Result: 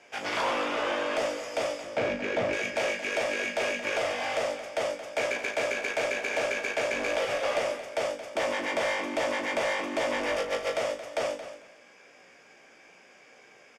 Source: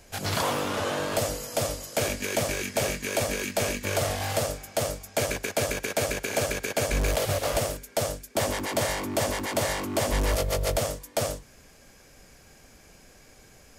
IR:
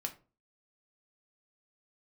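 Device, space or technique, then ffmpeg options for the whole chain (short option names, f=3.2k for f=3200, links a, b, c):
intercom: -filter_complex "[0:a]bandreject=f=4.1k:w=5.4,asettb=1/sr,asplit=3[a][b][c];[a]atrim=end=1.834[d];[b]atrim=start=1.83:end=2.53,asetpts=PTS-STARTPTS,afade=t=in:d=0.004:c=qsin,afade=t=out:st=0.696:d=0.004:c=qsin,aemphasis=mode=reproduction:type=riaa[e];[c]atrim=start=2.526[f];[d][e]acrossfade=d=0.004:c1=hsin:c2=qsin[g];[g][f]acrossfade=d=0.004:c1=qsin:c2=hsin,highpass=380,lowpass=4.1k,equalizer=f=2.3k:t=o:w=0.49:g=5,asplit=2[h][i];[i]adelay=17,volume=-7dB[j];[h][j]amix=inputs=2:normalize=0,asoftclip=type=tanh:threshold=-21.5dB,asplit=2[k][l];[l]adelay=37,volume=-9dB[m];[k][m]amix=inputs=2:normalize=0,aecho=1:1:224|448:0.251|0.0452"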